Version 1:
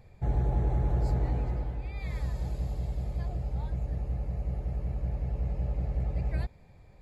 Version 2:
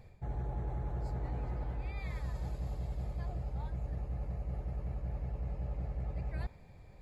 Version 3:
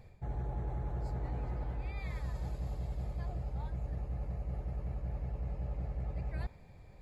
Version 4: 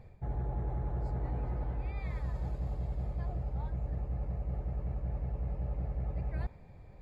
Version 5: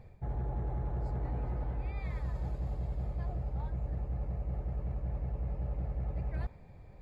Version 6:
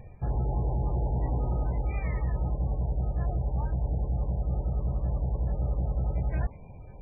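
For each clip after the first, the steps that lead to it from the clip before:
dynamic bell 1.2 kHz, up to +5 dB, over -55 dBFS, Q 0.98; reverse; compression, threshold -34 dBFS, peak gain reduction 12 dB; reverse
no audible change
treble shelf 2.9 kHz -11 dB; trim +2.5 dB
hard clipper -28 dBFS, distortion -26 dB
trim +7.5 dB; MP3 8 kbps 16 kHz

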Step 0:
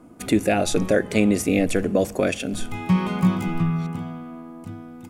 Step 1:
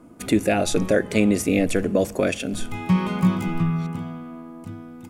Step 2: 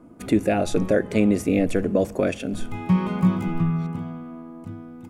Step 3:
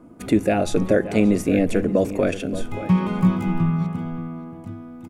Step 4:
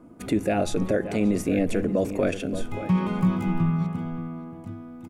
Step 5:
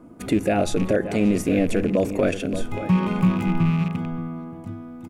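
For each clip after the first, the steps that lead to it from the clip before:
band-stop 750 Hz, Q 25
treble shelf 2 kHz -8.5 dB
echo from a far wall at 99 m, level -12 dB; trim +1.5 dB
peak limiter -11 dBFS, peak gain reduction 6 dB; trim -2.5 dB
rattle on loud lows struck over -27 dBFS, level -30 dBFS; trim +3 dB

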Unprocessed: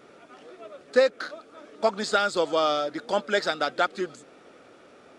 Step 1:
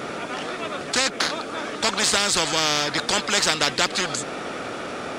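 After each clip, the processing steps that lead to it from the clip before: spectrum-flattening compressor 4:1; trim +6.5 dB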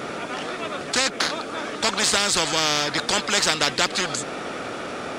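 no audible change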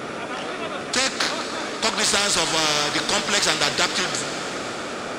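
plate-style reverb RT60 5 s, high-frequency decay 1×, DRR 6.5 dB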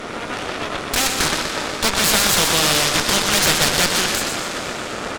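feedback delay 123 ms, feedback 53%, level -6 dB; Chebyshev shaper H 8 -9 dB, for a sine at -1.5 dBFS; saturation -4 dBFS, distortion -18 dB

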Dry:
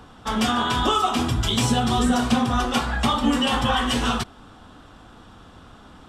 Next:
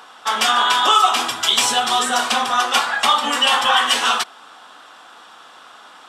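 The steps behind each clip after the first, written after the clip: high-pass 830 Hz 12 dB/octave; trim +9 dB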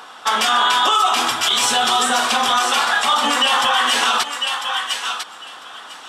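thinning echo 999 ms, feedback 17%, high-pass 1 kHz, level -9 dB; peak limiter -11.5 dBFS, peak gain reduction 9.5 dB; trim +4 dB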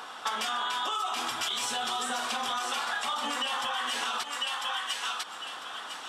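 compression 6:1, threshold -26 dBFS, peak gain reduction 13 dB; trim -3.5 dB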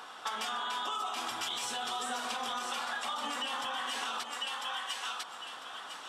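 bucket-brigade echo 150 ms, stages 1024, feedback 69%, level -7.5 dB; trim -5 dB

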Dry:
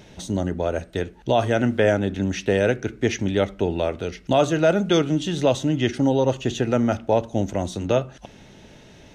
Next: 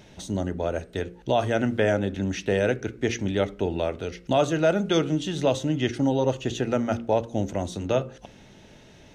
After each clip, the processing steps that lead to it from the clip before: de-hum 58.41 Hz, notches 9; trim -3 dB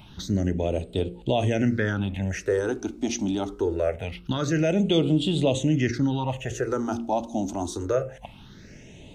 in parallel at +3 dB: peak limiter -20 dBFS, peak gain reduction 10 dB; on the sum: phase shifter stages 6, 0.24 Hz, lowest notch 120–1700 Hz; trim -2.5 dB

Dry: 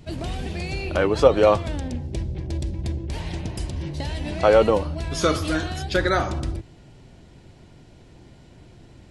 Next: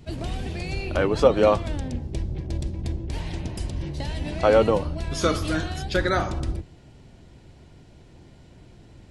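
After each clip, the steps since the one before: octave divider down 1 oct, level -4 dB; trim -2 dB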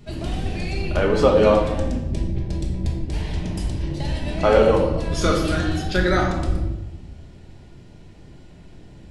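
simulated room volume 430 m³, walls mixed, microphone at 1.3 m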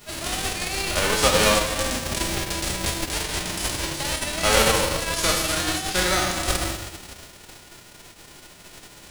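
formants flattened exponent 0.3; trim -3.5 dB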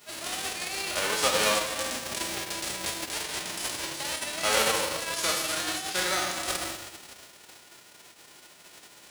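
high-pass 400 Hz 6 dB/octave; trim -5 dB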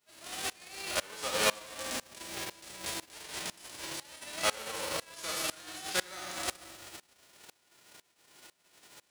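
sawtooth tremolo in dB swelling 2 Hz, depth 24 dB

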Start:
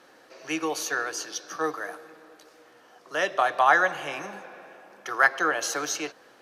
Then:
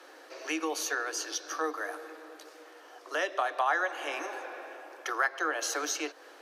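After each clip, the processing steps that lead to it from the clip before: steep high-pass 280 Hz 96 dB/octave; compression 2:1, threshold -37 dBFS, peak gain reduction 13 dB; trim +3 dB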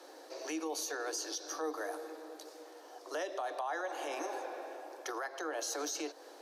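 high-order bell 1.9 kHz -8.5 dB; peak limiter -30 dBFS, peak gain reduction 11.5 dB; trim +1 dB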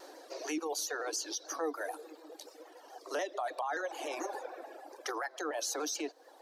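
reverb removal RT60 1.4 s; vibrato with a chosen wave saw down 6.9 Hz, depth 100 cents; trim +3 dB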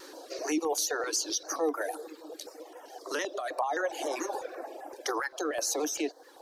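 step-sequenced notch 7.7 Hz 690–4300 Hz; trim +7 dB

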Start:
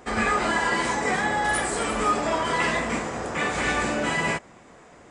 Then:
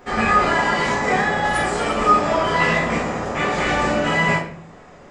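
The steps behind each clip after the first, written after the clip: peaking EQ 9.1 kHz -12 dB 0.51 oct; simulated room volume 60 m³, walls mixed, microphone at 0.97 m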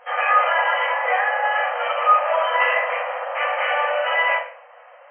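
FFT band-pass 480–3200 Hz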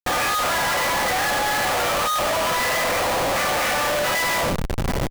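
echo from a far wall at 120 m, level -20 dB; Schmitt trigger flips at -34.5 dBFS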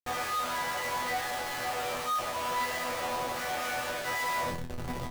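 chord resonator E2 fifth, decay 0.25 s; trim -3 dB

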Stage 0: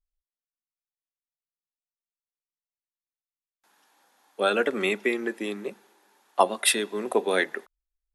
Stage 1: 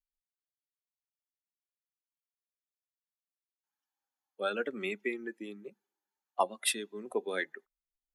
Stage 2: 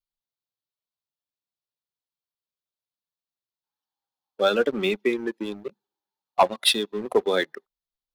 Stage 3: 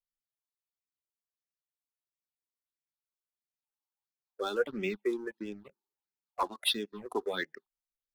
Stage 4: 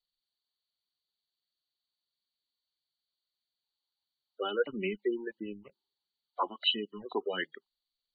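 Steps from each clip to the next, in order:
expander on every frequency bin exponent 1.5; trim -7.5 dB
ten-band graphic EQ 125 Hz +9 dB, 500 Hz +3 dB, 1 kHz +5 dB, 2 kHz -7 dB, 4 kHz +10 dB, 8 kHz -9 dB; waveshaping leveller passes 2; trim +2 dB
phase shifter stages 6, 1.5 Hz, lowest notch 140–1100 Hz; trim -7 dB
knee-point frequency compression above 2.8 kHz 4:1; spectral gate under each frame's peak -25 dB strong

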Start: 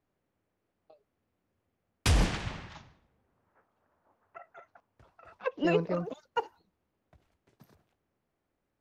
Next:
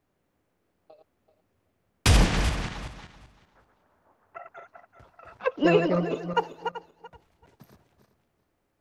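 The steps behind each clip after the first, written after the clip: backward echo that repeats 192 ms, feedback 41%, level -6.5 dB; trim +6 dB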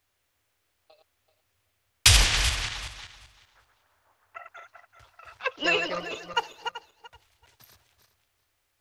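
FFT filter 110 Hz 0 dB, 160 Hz -16 dB, 3.4 kHz +12 dB; trim -2.5 dB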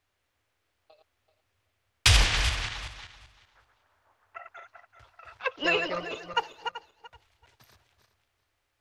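low-pass 3.6 kHz 6 dB/octave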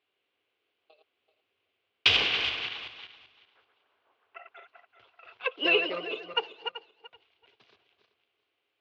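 cabinet simulation 320–3600 Hz, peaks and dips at 410 Hz +5 dB, 600 Hz -6 dB, 900 Hz -8 dB, 1.3 kHz -6 dB, 1.8 kHz -9 dB, 2.9 kHz +4 dB; trim +2 dB

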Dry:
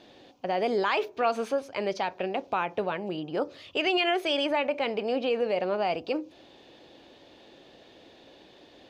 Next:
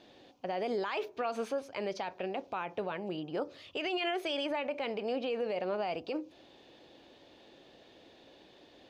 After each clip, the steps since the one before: peak limiter -21 dBFS, peak gain reduction 6.5 dB; trim -4.5 dB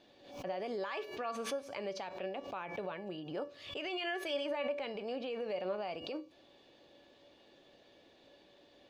feedback comb 570 Hz, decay 0.38 s, mix 80%; swell ahead of each attack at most 85 dB/s; trim +7.5 dB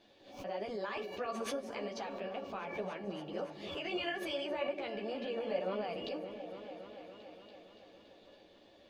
chorus voices 6, 1.5 Hz, delay 12 ms, depth 3 ms; delay with an opening low-pass 284 ms, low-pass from 400 Hz, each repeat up 1 oct, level -6 dB; trim +2.5 dB

